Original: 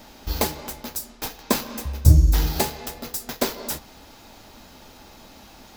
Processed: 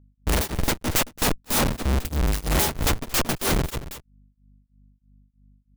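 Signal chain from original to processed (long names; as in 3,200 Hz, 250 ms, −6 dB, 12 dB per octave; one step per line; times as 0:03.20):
samples in bit-reversed order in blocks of 16 samples
high-shelf EQ 7,300 Hz +9.5 dB
comparator with hysteresis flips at −25 dBFS
mains hum 50 Hz, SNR 31 dB
on a send: single-tap delay 225 ms −15 dB
on the sum: tremolo along a rectified sine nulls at 3.1 Hz
level +3 dB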